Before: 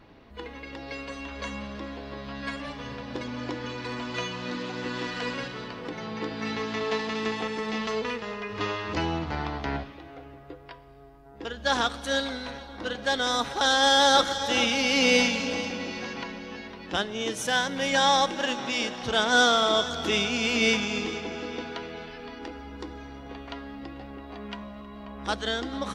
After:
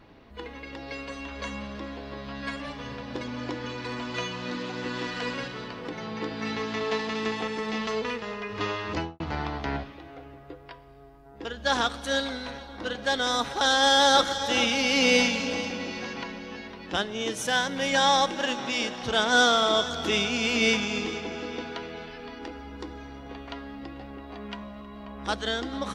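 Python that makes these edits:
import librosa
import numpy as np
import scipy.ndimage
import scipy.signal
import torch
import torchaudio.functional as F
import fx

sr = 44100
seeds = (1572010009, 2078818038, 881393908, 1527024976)

y = fx.studio_fade_out(x, sr, start_s=8.92, length_s=0.28)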